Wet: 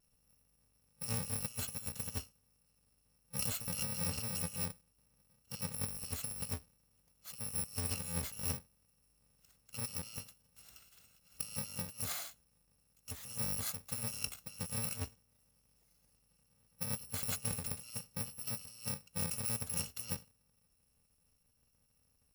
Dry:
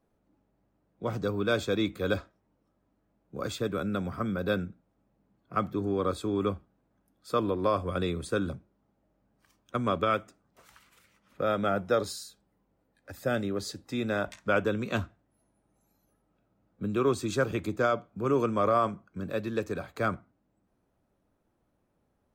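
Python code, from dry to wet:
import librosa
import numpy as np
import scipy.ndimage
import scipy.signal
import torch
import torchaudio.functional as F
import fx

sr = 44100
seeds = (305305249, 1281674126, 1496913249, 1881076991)

y = fx.bit_reversed(x, sr, seeds[0], block=128)
y = fx.vibrato(y, sr, rate_hz=0.61, depth_cents=12.0)
y = fx.over_compress(y, sr, threshold_db=-34.0, ratio=-0.5)
y = y * librosa.db_to_amplitude(-5.0)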